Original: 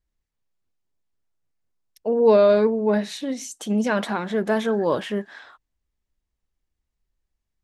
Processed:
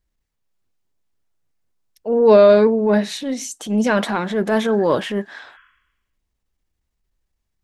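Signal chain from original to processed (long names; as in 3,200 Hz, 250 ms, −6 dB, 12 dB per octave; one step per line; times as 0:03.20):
transient designer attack −7 dB, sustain 0 dB
healed spectral selection 0:05.50–0:06.21, 1,000–3,400 Hz both
level +5.5 dB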